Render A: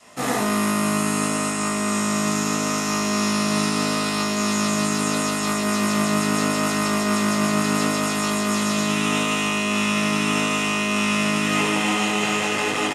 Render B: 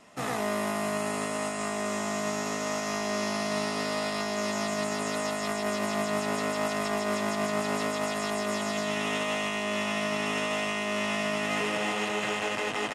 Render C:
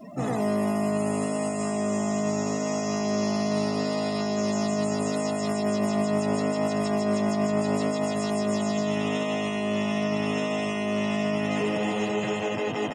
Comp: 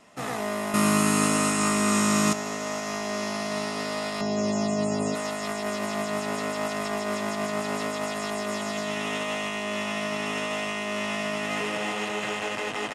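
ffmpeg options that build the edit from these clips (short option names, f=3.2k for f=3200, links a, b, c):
-filter_complex "[1:a]asplit=3[a][b][c];[a]atrim=end=0.742[d];[0:a]atrim=start=0.738:end=2.332[e];[b]atrim=start=2.328:end=4.212[f];[2:a]atrim=start=4.208:end=5.152[g];[c]atrim=start=5.148[h];[d][e]acrossfade=d=0.004:c1=hsin:c2=hsin[i];[i][f]acrossfade=d=0.004:c1=hsin:c2=hsin[j];[j][g]acrossfade=d=0.004:c1=hsin:c2=hsin[k];[k][h]acrossfade=d=0.004:c1=hsin:c2=hsin"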